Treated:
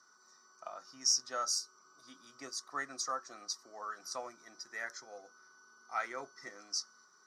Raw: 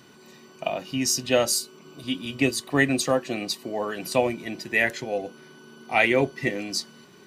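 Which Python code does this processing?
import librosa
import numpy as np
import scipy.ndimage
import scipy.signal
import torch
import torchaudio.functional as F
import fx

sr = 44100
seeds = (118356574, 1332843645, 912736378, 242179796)

y = fx.double_bandpass(x, sr, hz=2700.0, octaves=2.1)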